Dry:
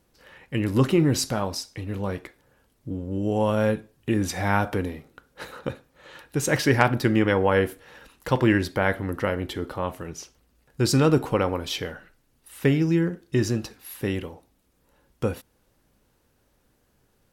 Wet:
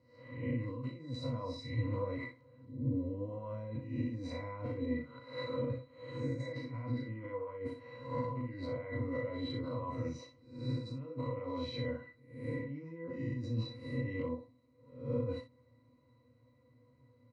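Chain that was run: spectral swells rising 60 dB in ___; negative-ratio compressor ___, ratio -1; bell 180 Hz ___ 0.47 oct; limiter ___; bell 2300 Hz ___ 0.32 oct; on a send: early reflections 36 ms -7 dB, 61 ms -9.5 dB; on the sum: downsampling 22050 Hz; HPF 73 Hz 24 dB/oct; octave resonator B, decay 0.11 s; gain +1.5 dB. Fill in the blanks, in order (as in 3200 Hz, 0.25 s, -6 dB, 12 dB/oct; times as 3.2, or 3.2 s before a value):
0.59 s, -30 dBFS, -5 dB, -20 dBFS, +3 dB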